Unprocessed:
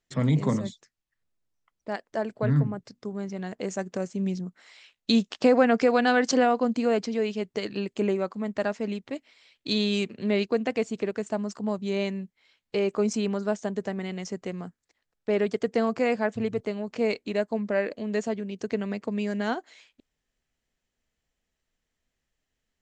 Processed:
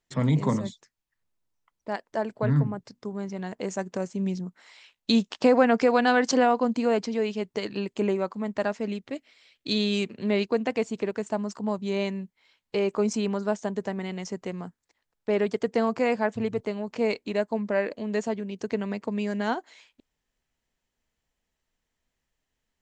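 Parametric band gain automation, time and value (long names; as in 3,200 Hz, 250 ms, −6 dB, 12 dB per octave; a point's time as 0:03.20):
parametric band 940 Hz 0.34 octaves
0:08.60 +5.5 dB
0:09.05 −3.5 dB
0:09.75 −3.5 dB
0:10.24 +5.5 dB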